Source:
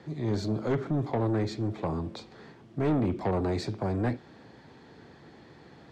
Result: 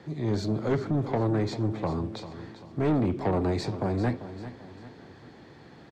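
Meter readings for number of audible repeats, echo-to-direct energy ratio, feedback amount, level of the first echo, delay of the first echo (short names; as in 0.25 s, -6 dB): 3, -12.0 dB, 41%, -13.0 dB, 0.393 s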